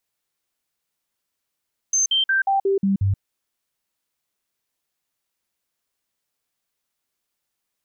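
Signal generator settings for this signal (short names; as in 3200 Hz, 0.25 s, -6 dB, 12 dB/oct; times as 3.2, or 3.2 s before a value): stepped sine 6270 Hz down, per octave 1, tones 7, 0.13 s, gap 0.05 s -16 dBFS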